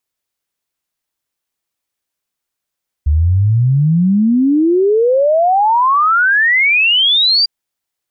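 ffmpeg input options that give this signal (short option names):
-f lavfi -i "aevalsrc='0.376*clip(min(t,4.4-t)/0.01,0,1)*sin(2*PI*71*4.4/log(4800/71)*(exp(log(4800/71)*t/4.4)-1))':d=4.4:s=44100"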